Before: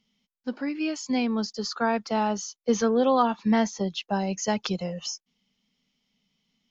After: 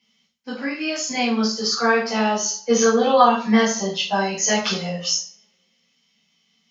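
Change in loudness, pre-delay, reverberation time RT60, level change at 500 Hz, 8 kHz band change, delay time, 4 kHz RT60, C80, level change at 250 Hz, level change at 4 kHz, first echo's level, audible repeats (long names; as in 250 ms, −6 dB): +6.5 dB, 3 ms, 0.45 s, +6.5 dB, can't be measured, no echo audible, 0.40 s, 11.0 dB, +3.5 dB, +11.0 dB, no echo audible, no echo audible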